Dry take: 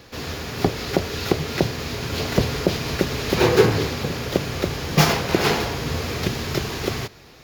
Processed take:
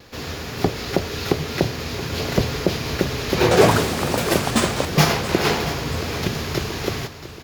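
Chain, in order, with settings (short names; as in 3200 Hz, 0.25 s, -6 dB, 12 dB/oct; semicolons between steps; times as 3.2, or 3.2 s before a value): vibrato 0.58 Hz 11 cents; 3.41–5.42 echoes that change speed 0.1 s, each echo +7 st, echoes 3; feedback echo 0.678 s, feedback 49%, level -14 dB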